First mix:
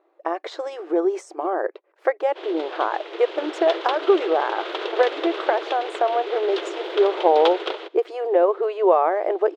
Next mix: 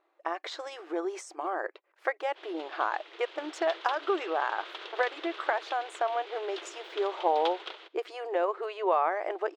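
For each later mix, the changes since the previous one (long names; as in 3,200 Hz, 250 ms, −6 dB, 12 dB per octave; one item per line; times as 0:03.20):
background −8.5 dB
master: add parametric band 430 Hz −13 dB 2 octaves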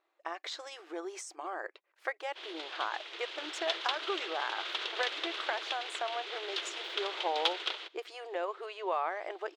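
speech −8.5 dB
master: add high-shelf EQ 2,000 Hz +11 dB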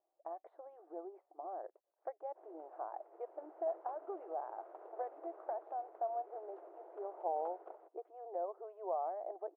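background: remove low-pass with resonance 3,400 Hz, resonance Q 3.5
master: add transistor ladder low-pass 790 Hz, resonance 60%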